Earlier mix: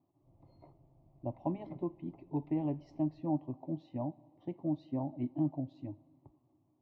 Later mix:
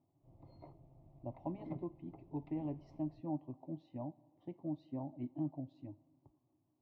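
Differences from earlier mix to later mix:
speech −6.5 dB
background +3.0 dB

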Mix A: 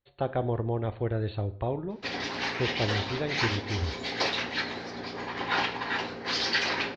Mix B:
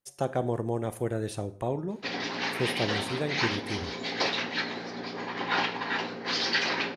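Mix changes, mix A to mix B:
speech: remove linear-phase brick-wall low-pass 4,500 Hz
master: add low shelf with overshoot 110 Hz −10 dB, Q 1.5

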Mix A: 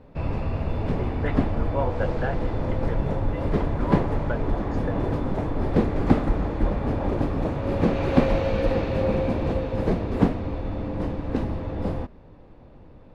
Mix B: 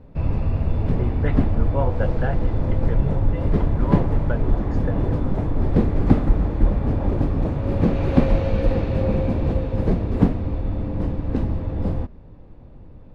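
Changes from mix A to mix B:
background −3.0 dB
master: add low-shelf EQ 250 Hz +10 dB

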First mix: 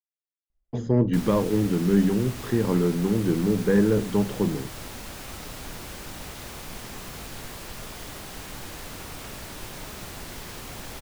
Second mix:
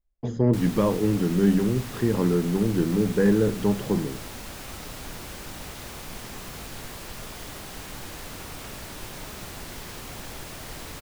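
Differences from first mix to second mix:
speech: entry −0.50 s
background: entry −0.60 s

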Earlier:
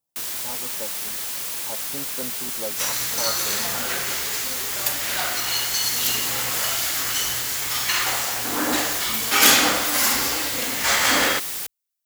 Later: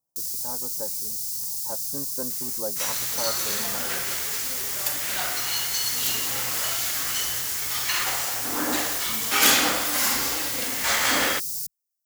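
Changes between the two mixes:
first sound: add elliptic band-stop filter 170–5,100 Hz, stop band 40 dB
second sound −3.5 dB

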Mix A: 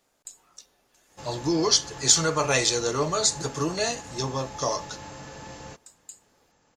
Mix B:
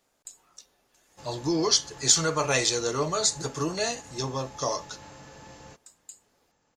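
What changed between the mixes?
background −6.0 dB
reverb: off

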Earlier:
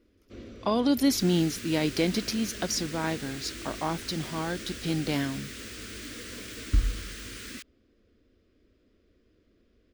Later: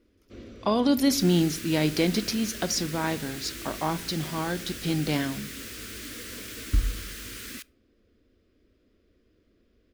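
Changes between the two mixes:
second sound: add parametric band 13,000 Hz +15 dB 0.35 octaves
reverb: on, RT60 0.60 s

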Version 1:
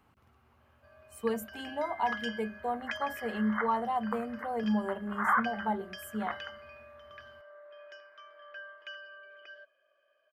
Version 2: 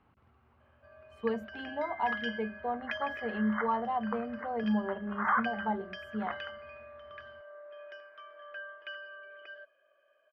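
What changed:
first sound +4.0 dB
master: add high-frequency loss of the air 250 metres

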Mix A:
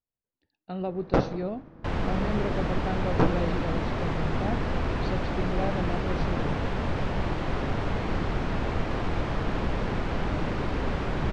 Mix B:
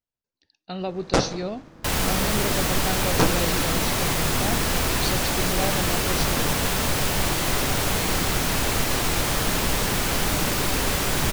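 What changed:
second sound: send on
master: remove head-to-tape spacing loss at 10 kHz 40 dB

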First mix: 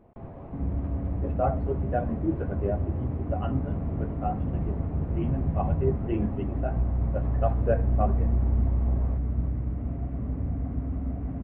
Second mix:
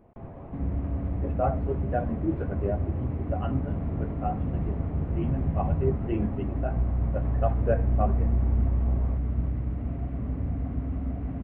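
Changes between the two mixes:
speech: add high-frequency loss of the air 340 metres
master: add high-shelf EQ 2,500 Hz +10.5 dB

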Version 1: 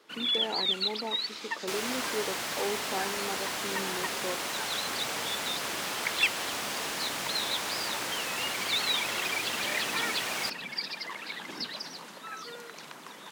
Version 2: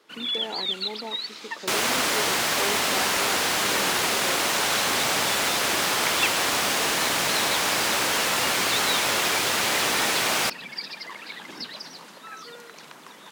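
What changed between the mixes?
second sound +10.5 dB
reverb: on, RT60 2.5 s

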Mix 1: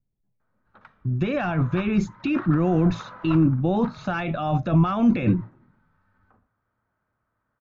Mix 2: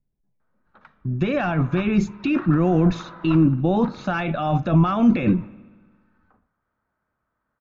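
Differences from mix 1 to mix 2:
speech: send on
master: add parametric band 110 Hz −8 dB 0.32 octaves

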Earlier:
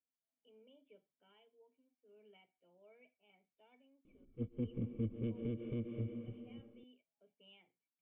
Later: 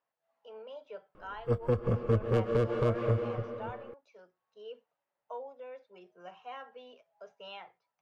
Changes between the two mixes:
background: entry −2.90 s
master: remove formant resonators in series i

